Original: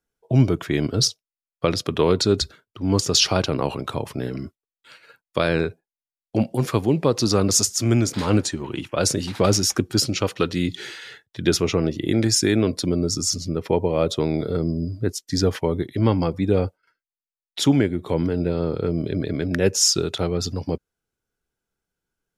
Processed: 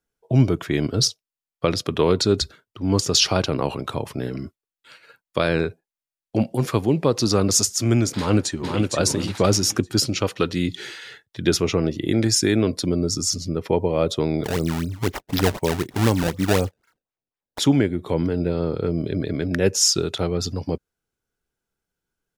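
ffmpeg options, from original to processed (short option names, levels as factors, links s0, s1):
-filter_complex "[0:a]asplit=2[s0][s1];[s1]afade=t=in:st=8.17:d=0.01,afade=t=out:st=8.92:d=0.01,aecho=0:1:460|920|1380|1840:0.668344|0.167086|0.0417715|0.0104429[s2];[s0][s2]amix=inputs=2:normalize=0,asettb=1/sr,asplit=3[s3][s4][s5];[s3]atrim=end=14.444[s6];[s4]atrim=start=14.44:end=17.59,asetpts=PTS-STARTPTS,afade=t=in:d=0.004:c=qsin,afade=t=out:st=3.146:d=0.004:c=qsin,acrusher=samples=24:mix=1:aa=0.000001:lfo=1:lforange=38.4:lforate=4[s7];[s5]atrim=start=17.586[s8];[s6][s7]acrossfade=d=0.004:c1=hsin:c2=qsin[s9];[s9][s8]acrossfade=d=0.004:c1=qsin:c2=hsin"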